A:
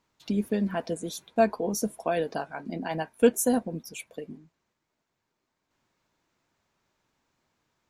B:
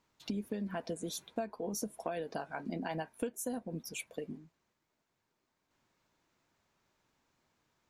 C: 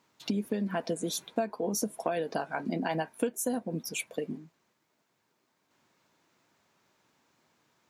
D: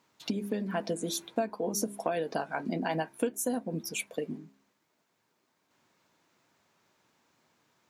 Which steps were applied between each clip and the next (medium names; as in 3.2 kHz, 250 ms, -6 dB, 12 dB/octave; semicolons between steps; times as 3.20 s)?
compression 16:1, threshold -32 dBFS, peak gain reduction 19.5 dB; trim -1.5 dB
high-pass 130 Hz 12 dB/octave; trim +7 dB
de-hum 67.55 Hz, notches 6